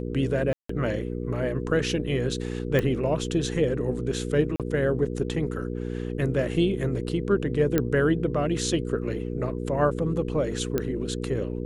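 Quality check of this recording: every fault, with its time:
hum 60 Hz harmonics 8 -31 dBFS
0.53–0.69 gap 0.164 s
2.79 pop -13 dBFS
4.56–4.6 gap 37 ms
7.78 pop -9 dBFS
10.78 pop -12 dBFS

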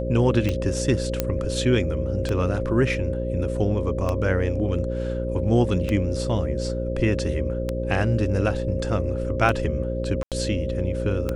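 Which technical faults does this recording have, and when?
buzz 60 Hz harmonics 10 -28 dBFS
tick 33 1/3 rpm -12 dBFS
tone 530 Hz -29 dBFS
1.2 pop -7 dBFS
10.23–10.32 gap 87 ms

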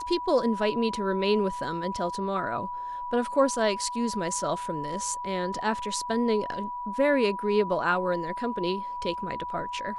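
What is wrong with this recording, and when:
tone 980 Hz -32 dBFS

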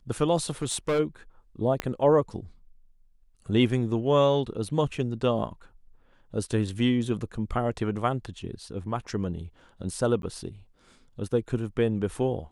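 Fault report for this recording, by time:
0.62–1 clipped -22 dBFS
1.8 pop -13 dBFS
10.22–10.23 gap 12 ms

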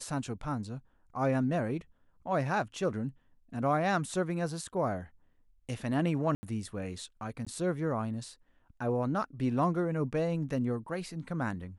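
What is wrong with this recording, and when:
6.35–6.43 gap 80 ms
7.45–7.47 gap 16 ms

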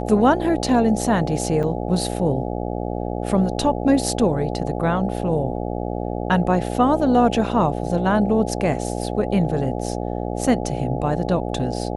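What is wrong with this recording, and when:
buzz 60 Hz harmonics 14 -26 dBFS
1.63–1.64 gap 5.4 ms

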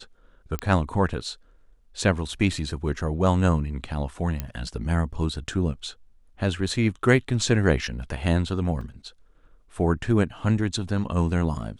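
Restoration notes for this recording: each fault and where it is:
0.59 pop -13 dBFS
4.4 pop -14 dBFS
8.81 gap 3.2 ms

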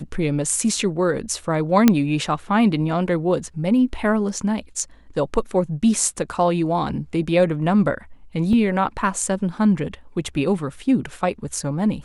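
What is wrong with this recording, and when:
1.88 pop 0 dBFS
8.53 gap 2.3 ms

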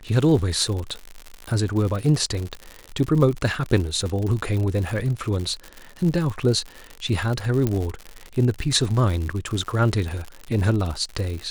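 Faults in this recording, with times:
crackle 110/s -27 dBFS
7.67 pop -10 dBFS

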